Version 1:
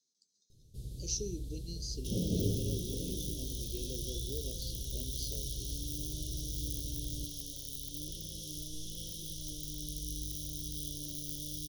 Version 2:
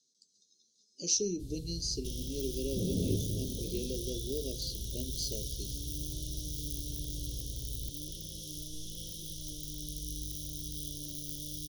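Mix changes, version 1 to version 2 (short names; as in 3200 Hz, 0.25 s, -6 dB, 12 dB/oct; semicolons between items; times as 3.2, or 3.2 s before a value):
speech +7.0 dB; first sound: entry +0.65 s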